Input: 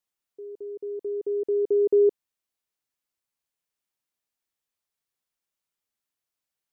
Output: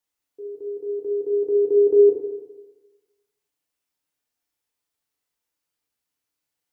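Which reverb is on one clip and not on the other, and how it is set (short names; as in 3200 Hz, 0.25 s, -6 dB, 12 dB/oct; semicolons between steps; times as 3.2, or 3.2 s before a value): FDN reverb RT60 1.2 s, low-frequency decay 0.95×, high-frequency decay 0.75×, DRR -0.5 dB; gain +1 dB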